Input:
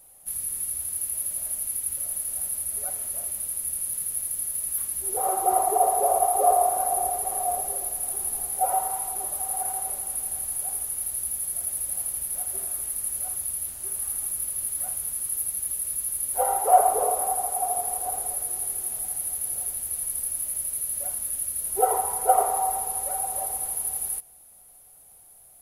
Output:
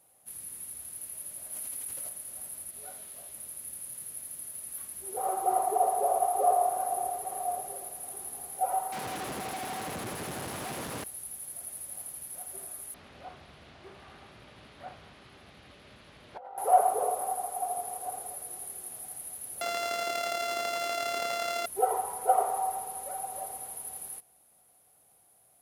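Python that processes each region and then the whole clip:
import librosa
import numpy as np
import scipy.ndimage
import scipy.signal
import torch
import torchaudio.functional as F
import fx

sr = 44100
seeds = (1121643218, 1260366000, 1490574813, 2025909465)

y = fx.chain(x, sr, fx.low_shelf(hz=160.0, db=-7.5),
    fx.env_flatten(amount_pct=100), at=(1.52, 2.09))
y = fx.chain(y, sr, fx.peak_eq(hz=3600.0, db=5.5, octaves=1.1),
    fx.room_flutter(wall_m=7.6, rt60_s=0.35),
    fx.detune_double(cents=14), at=(2.71, 3.34))
y = fx.chain(y, sr, fx.highpass(hz=160.0, slope=6),
    fx.schmitt(flips_db=-30.5), at=(8.92, 11.04))
y = fx.chain(y, sr, fx.lowpass(hz=4100.0, slope=24),
    fx.over_compress(threshold_db=-36.0, ratio=-1.0),
    fx.doppler_dist(depth_ms=0.28), at=(12.94, 16.58))
y = fx.chain(y, sr, fx.sample_sort(block=64),
    fx.bass_treble(bass_db=-8, treble_db=2),
    fx.env_flatten(amount_pct=100), at=(19.61, 21.66))
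y = scipy.signal.sosfilt(scipy.signal.butter(2, 110.0, 'highpass', fs=sr, output='sos'), y)
y = fx.high_shelf(y, sr, hz=7800.0, db=-10.5)
y = y * 10.0 ** (-4.5 / 20.0)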